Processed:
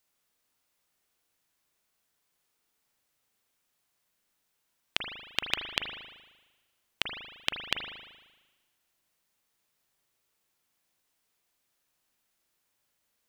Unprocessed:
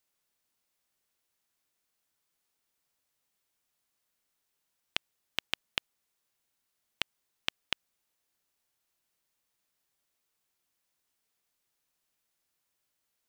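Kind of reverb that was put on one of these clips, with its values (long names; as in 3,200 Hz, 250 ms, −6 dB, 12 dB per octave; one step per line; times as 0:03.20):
spring reverb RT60 1.2 s, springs 38 ms, chirp 45 ms, DRR 3.5 dB
level +3 dB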